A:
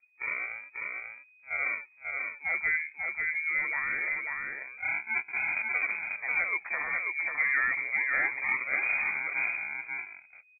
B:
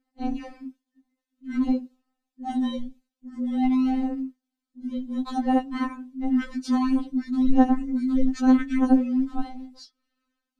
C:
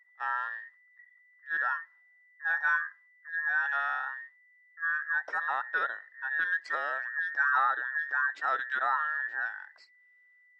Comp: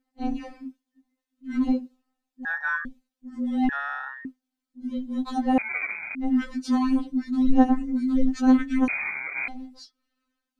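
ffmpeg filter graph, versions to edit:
-filter_complex "[2:a]asplit=2[a][b];[0:a]asplit=2[c][d];[1:a]asplit=5[e][f][g][h][i];[e]atrim=end=2.452[j];[a]atrim=start=2.448:end=2.852[k];[f]atrim=start=2.848:end=3.692[l];[b]atrim=start=3.688:end=4.252[m];[g]atrim=start=4.248:end=5.582[n];[c]atrim=start=5.578:end=6.152[o];[h]atrim=start=6.148:end=8.882[p];[d]atrim=start=8.878:end=9.482[q];[i]atrim=start=9.478[r];[j][k]acrossfade=d=0.004:c1=hsin:c2=hsin[s];[s][l]acrossfade=d=0.004:c1=hsin:c2=hsin[t];[t][m]acrossfade=d=0.004:c1=hsin:c2=hsin[u];[u][n]acrossfade=d=0.004:c1=hsin:c2=hsin[v];[v][o]acrossfade=d=0.004:c1=hsin:c2=hsin[w];[w][p]acrossfade=d=0.004:c1=hsin:c2=hsin[x];[x][q]acrossfade=d=0.004:c1=hsin:c2=hsin[y];[y][r]acrossfade=d=0.004:c1=hsin:c2=hsin"

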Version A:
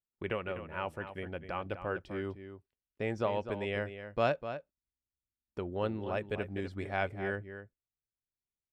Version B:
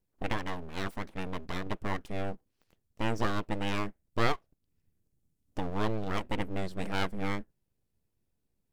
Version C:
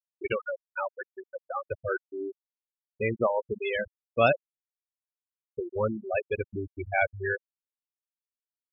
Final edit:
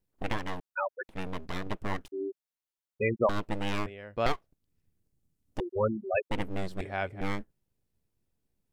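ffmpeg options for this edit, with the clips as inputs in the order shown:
-filter_complex "[2:a]asplit=3[a][b][c];[0:a]asplit=2[d][e];[1:a]asplit=6[f][g][h][i][j][k];[f]atrim=end=0.602[l];[a]atrim=start=0.598:end=1.092[m];[g]atrim=start=1.088:end=2.082[n];[b]atrim=start=2.078:end=3.292[o];[h]atrim=start=3.288:end=3.862[p];[d]atrim=start=3.858:end=4.262[q];[i]atrim=start=4.258:end=5.602[r];[c]atrim=start=5.598:end=6.312[s];[j]atrim=start=6.308:end=6.812[t];[e]atrim=start=6.808:end=7.212[u];[k]atrim=start=7.208[v];[l][m]acrossfade=d=0.004:c1=hsin:c2=hsin[w];[w][n]acrossfade=d=0.004:c1=hsin:c2=hsin[x];[x][o]acrossfade=d=0.004:c1=hsin:c2=hsin[y];[y][p]acrossfade=d=0.004:c1=hsin:c2=hsin[z];[z][q]acrossfade=d=0.004:c1=hsin:c2=hsin[aa];[aa][r]acrossfade=d=0.004:c1=hsin:c2=hsin[ab];[ab][s]acrossfade=d=0.004:c1=hsin:c2=hsin[ac];[ac][t]acrossfade=d=0.004:c1=hsin:c2=hsin[ad];[ad][u]acrossfade=d=0.004:c1=hsin:c2=hsin[ae];[ae][v]acrossfade=d=0.004:c1=hsin:c2=hsin"

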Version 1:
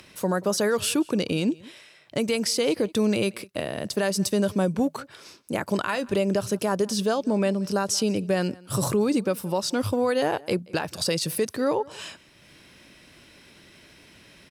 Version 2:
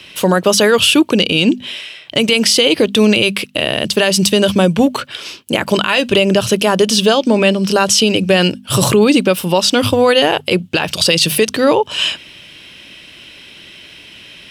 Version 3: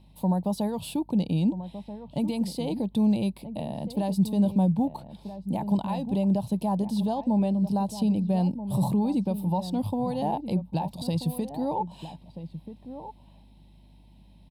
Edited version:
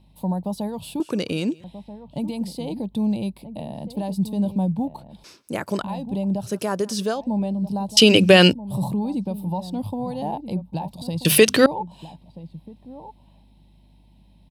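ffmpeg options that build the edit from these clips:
-filter_complex "[0:a]asplit=3[a][b][c];[1:a]asplit=2[d][e];[2:a]asplit=6[f][g][h][i][j][k];[f]atrim=end=1.002[l];[a]atrim=start=0.998:end=1.642[m];[g]atrim=start=1.638:end=5.242[n];[b]atrim=start=5.238:end=5.822[o];[h]atrim=start=5.818:end=6.55[p];[c]atrim=start=6.39:end=7.26[q];[i]atrim=start=7.1:end=7.972[r];[d]atrim=start=7.968:end=8.532[s];[j]atrim=start=8.528:end=11.252[t];[e]atrim=start=11.248:end=11.662[u];[k]atrim=start=11.658[v];[l][m]acrossfade=d=0.004:c1=hsin:c2=hsin[w];[w][n]acrossfade=d=0.004:c1=hsin:c2=hsin[x];[x][o]acrossfade=d=0.004:c1=hsin:c2=hsin[y];[y][p]acrossfade=d=0.004:c1=hsin:c2=hsin[z];[z][q]acrossfade=d=0.16:c1=tri:c2=tri[aa];[aa][r]acrossfade=d=0.16:c1=tri:c2=tri[ab];[ab][s]acrossfade=d=0.004:c1=hsin:c2=hsin[ac];[ac][t]acrossfade=d=0.004:c1=hsin:c2=hsin[ad];[ad][u]acrossfade=d=0.004:c1=hsin:c2=hsin[ae];[ae][v]acrossfade=d=0.004:c1=hsin:c2=hsin"

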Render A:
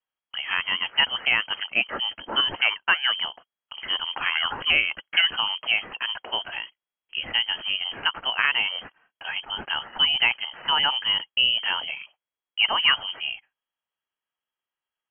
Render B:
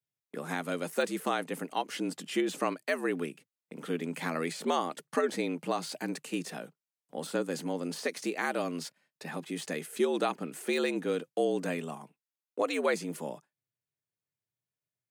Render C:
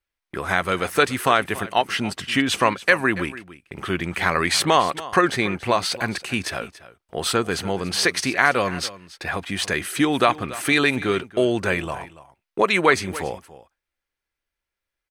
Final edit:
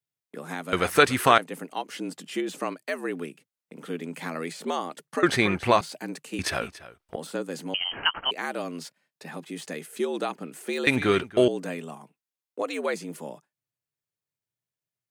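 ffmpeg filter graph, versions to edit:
-filter_complex "[2:a]asplit=4[a][b][c][d];[1:a]asplit=6[e][f][g][h][i][j];[e]atrim=end=0.732[k];[a]atrim=start=0.728:end=1.382[l];[f]atrim=start=1.378:end=5.232[m];[b]atrim=start=5.228:end=5.812[n];[g]atrim=start=5.808:end=6.392[o];[c]atrim=start=6.388:end=7.162[p];[h]atrim=start=7.158:end=7.742[q];[0:a]atrim=start=7.738:end=8.312[r];[i]atrim=start=8.308:end=10.872[s];[d]atrim=start=10.868:end=11.482[t];[j]atrim=start=11.478[u];[k][l]acrossfade=d=0.004:c1=hsin:c2=hsin[v];[v][m]acrossfade=d=0.004:c1=hsin:c2=hsin[w];[w][n]acrossfade=d=0.004:c1=hsin:c2=hsin[x];[x][o]acrossfade=d=0.004:c1=hsin:c2=hsin[y];[y][p]acrossfade=d=0.004:c1=hsin:c2=hsin[z];[z][q]acrossfade=d=0.004:c1=hsin:c2=hsin[aa];[aa][r]acrossfade=d=0.004:c1=hsin:c2=hsin[ab];[ab][s]acrossfade=d=0.004:c1=hsin:c2=hsin[ac];[ac][t]acrossfade=d=0.004:c1=hsin:c2=hsin[ad];[ad][u]acrossfade=d=0.004:c1=hsin:c2=hsin"

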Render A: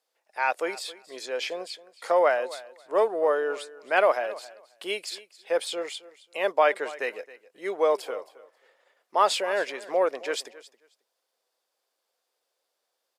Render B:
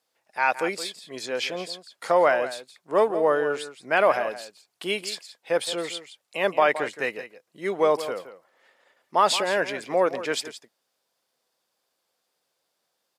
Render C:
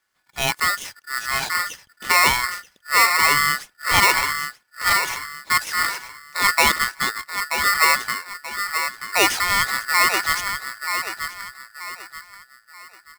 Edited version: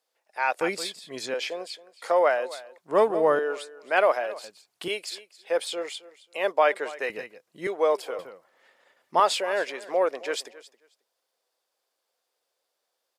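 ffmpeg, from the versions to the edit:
-filter_complex "[1:a]asplit=5[a][b][c][d][e];[0:a]asplit=6[f][g][h][i][j][k];[f]atrim=end=0.612[l];[a]atrim=start=0.608:end=1.342[m];[g]atrim=start=1.338:end=2.782[n];[b]atrim=start=2.778:end=3.392[o];[h]atrim=start=3.388:end=4.442[p];[c]atrim=start=4.438:end=4.882[q];[i]atrim=start=4.878:end=7.102[r];[d]atrim=start=7.098:end=7.672[s];[j]atrim=start=7.668:end=8.192[t];[e]atrim=start=8.188:end=9.202[u];[k]atrim=start=9.198[v];[l][m]acrossfade=d=0.004:c1=hsin:c2=hsin[w];[w][n]acrossfade=d=0.004:c1=hsin:c2=hsin[x];[x][o]acrossfade=d=0.004:c1=hsin:c2=hsin[y];[y][p]acrossfade=d=0.004:c1=hsin:c2=hsin[z];[z][q]acrossfade=d=0.004:c1=hsin:c2=hsin[aa];[aa][r]acrossfade=d=0.004:c1=hsin:c2=hsin[ab];[ab][s]acrossfade=d=0.004:c1=hsin:c2=hsin[ac];[ac][t]acrossfade=d=0.004:c1=hsin:c2=hsin[ad];[ad][u]acrossfade=d=0.004:c1=hsin:c2=hsin[ae];[ae][v]acrossfade=d=0.004:c1=hsin:c2=hsin"

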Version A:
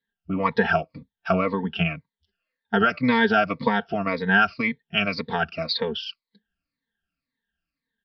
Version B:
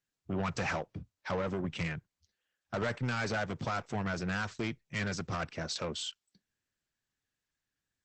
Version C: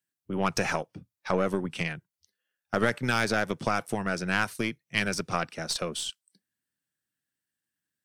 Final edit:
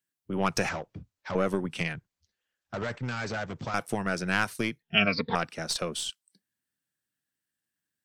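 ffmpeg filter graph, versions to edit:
-filter_complex "[1:a]asplit=2[a][b];[2:a]asplit=4[c][d][e][f];[c]atrim=end=0.692[g];[a]atrim=start=0.688:end=1.352[h];[d]atrim=start=1.348:end=1.952[i];[b]atrim=start=1.948:end=3.742[j];[e]atrim=start=3.738:end=4.822[k];[0:a]atrim=start=4.818:end=5.352[l];[f]atrim=start=5.348[m];[g][h]acrossfade=d=0.004:c1=hsin:c2=hsin[n];[n][i]acrossfade=d=0.004:c1=hsin:c2=hsin[o];[o][j]acrossfade=d=0.004:c1=hsin:c2=hsin[p];[p][k]acrossfade=d=0.004:c1=hsin:c2=hsin[q];[q][l]acrossfade=d=0.004:c1=hsin:c2=hsin[r];[r][m]acrossfade=d=0.004:c1=hsin:c2=hsin"

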